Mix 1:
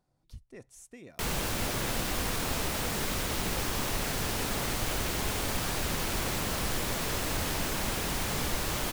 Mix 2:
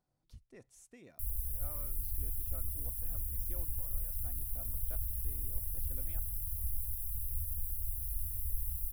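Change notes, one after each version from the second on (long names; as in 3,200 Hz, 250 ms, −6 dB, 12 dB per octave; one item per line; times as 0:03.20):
speech −7.5 dB
background: add inverse Chebyshev band-stop filter 160–6,600 Hz, stop band 40 dB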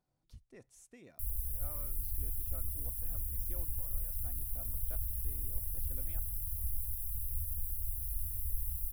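nothing changed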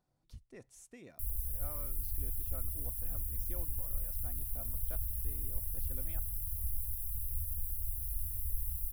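speech +3.0 dB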